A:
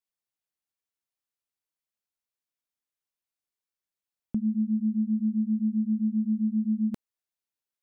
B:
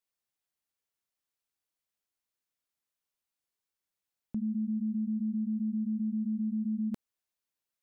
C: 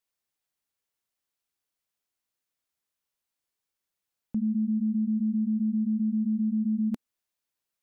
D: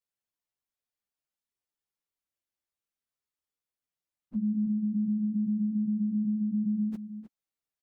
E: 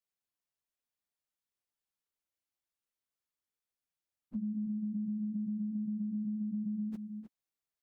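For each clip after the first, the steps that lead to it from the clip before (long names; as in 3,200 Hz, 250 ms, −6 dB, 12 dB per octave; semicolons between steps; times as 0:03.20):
brickwall limiter −29 dBFS, peak gain reduction 9 dB; level +1.5 dB
dynamic equaliser 250 Hz, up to +4 dB, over −48 dBFS; level +2.5 dB
partials spread apart or drawn together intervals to 119%; slap from a distant wall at 53 metres, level −12 dB; level −1 dB
downward compressor, threshold −31 dBFS, peak gain reduction 5.5 dB; level −2.5 dB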